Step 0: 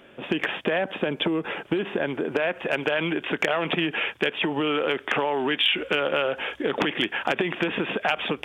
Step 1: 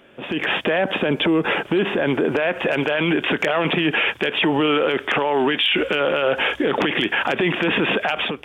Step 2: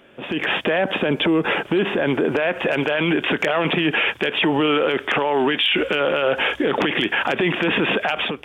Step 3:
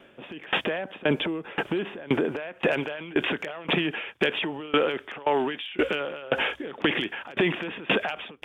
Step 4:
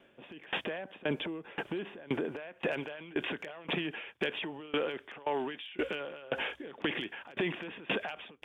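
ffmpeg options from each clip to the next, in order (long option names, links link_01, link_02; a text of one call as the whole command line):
ffmpeg -i in.wav -af "alimiter=limit=-22dB:level=0:latency=1:release=15,dynaudnorm=framelen=130:gausssize=5:maxgain=11dB" out.wav
ffmpeg -i in.wav -af anull out.wav
ffmpeg -i in.wav -af "aeval=exprs='val(0)*pow(10,-24*if(lt(mod(1.9*n/s,1),2*abs(1.9)/1000),1-mod(1.9*n/s,1)/(2*abs(1.9)/1000),(mod(1.9*n/s,1)-2*abs(1.9)/1000)/(1-2*abs(1.9)/1000))/20)':channel_layout=same" out.wav
ffmpeg -i in.wav -af "bandreject=frequency=1300:width=20,volume=-9dB" out.wav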